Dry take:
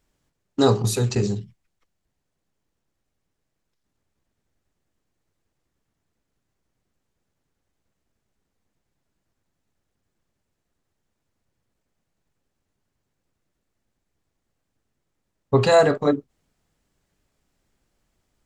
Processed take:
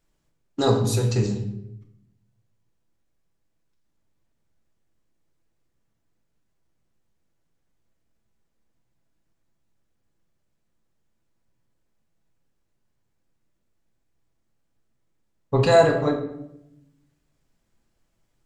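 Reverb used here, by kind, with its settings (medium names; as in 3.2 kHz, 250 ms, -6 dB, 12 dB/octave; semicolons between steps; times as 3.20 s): simulated room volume 230 m³, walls mixed, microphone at 0.73 m; trim -3.5 dB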